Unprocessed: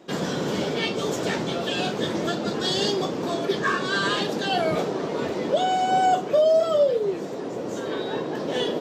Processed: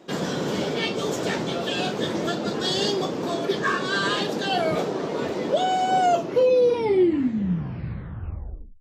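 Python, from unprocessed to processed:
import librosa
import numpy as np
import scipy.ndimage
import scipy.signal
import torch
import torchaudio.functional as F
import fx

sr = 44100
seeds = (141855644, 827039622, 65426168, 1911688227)

y = fx.tape_stop_end(x, sr, length_s=2.85)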